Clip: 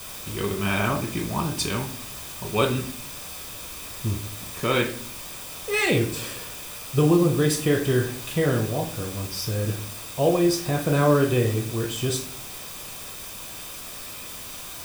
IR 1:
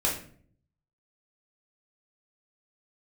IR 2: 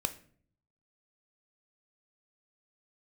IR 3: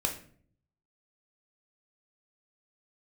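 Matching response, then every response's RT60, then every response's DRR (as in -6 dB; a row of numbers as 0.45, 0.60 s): 3; 0.50, 0.50, 0.50 s; -3.5, 9.0, 2.0 dB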